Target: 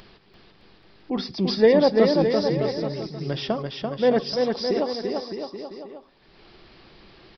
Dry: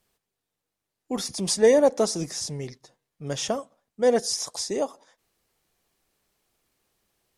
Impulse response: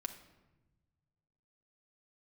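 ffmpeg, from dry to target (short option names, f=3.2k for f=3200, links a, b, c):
-filter_complex "[0:a]aresample=11025,aresample=44100,aecho=1:1:340|612|829.6|1004|1143:0.631|0.398|0.251|0.158|0.1,acompressor=mode=upward:threshold=-35dB:ratio=2.5,asplit=2[a][b];[b]lowshelf=f=520:t=q:w=3:g=7.5[c];[1:a]atrim=start_sample=2205,afade=t=out:st=0.19:d=0.01,atrim=end_sample=8820[d];[c][d]afir=irnorm=-1:irlink=0,volume=-11dB[e];[a][e]amix=inputs=2:normalize=0"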